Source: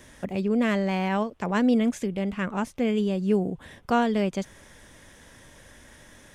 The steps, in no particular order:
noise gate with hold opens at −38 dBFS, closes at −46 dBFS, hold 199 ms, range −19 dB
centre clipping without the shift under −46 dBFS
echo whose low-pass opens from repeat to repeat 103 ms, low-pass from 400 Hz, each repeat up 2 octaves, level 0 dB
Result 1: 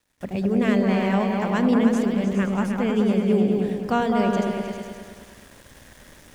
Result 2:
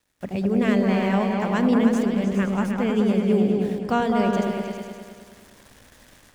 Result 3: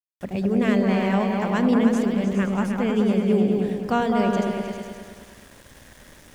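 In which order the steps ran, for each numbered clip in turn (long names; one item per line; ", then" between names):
echo whose low-pass opens from repeat to repeat, then centre clipping without the shift, then noise gate with hold
centre clipping without the shift, then echo whose low-pass opens from repeat to repeat, then noise gate with hold
echo whose low-pass opens from repeat to repeat, then noise gate with hold, then centre clipping without the shift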